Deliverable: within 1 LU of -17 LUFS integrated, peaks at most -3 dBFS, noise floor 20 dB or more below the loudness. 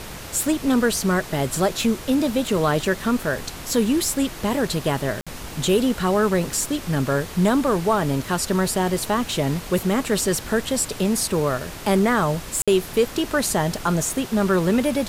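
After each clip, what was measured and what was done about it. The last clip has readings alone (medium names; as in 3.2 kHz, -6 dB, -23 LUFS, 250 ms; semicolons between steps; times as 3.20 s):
dropouts 2; longest dropout 56 ms; noise floor -36 dBFS; noise floor target -42 dBFS; loudness -22.0 LUFS; peak level -7.5 dBFS; loudness target -17.0 LUFS
-> interpolate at 5.21/12.62 s, 56 ms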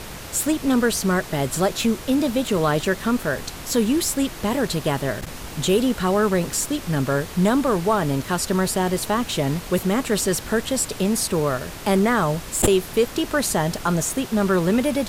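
dropouts 0; noise floor -36 dBFS; noise floor target -42 dBFS
-> noise print and reduce 6 dB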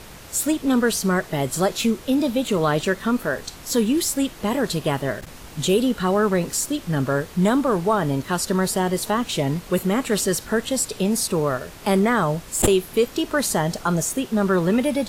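noise floor -41 dBFS; noise floor target -42 dBFS
-> noise print and reduce 6 dB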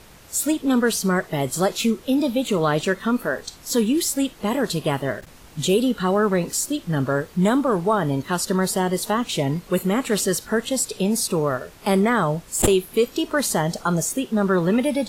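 noise floor -46 dBFS; loudness -22.0 LUFS; peak level -3.5 dBFS; loudness target -17.0 LUFS
-> trim +5 dB; peak limiter -3 dBFS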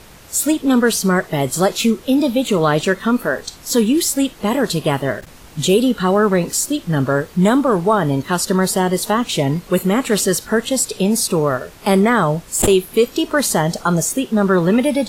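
loudness -17.0 LUFS; peak level -3.0 dBFS; noise floor -41 dBFS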